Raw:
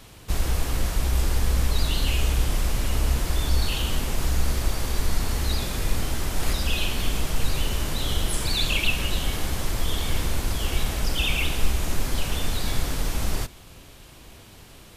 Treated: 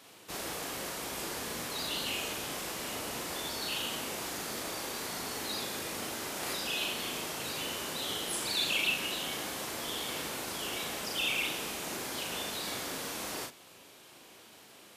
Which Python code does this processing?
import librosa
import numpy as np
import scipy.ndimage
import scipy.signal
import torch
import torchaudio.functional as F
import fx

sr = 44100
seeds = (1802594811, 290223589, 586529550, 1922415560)

y = scipy.signal.sosfilt(scipy.signal.butter(2, 290.0, 'highpass', fs=sr, output='sos'), x)
y = fx.doubler(y, sr, ms=38.0, db=-3.5)
y = y * librosa.db_to_amplitude(-6.0)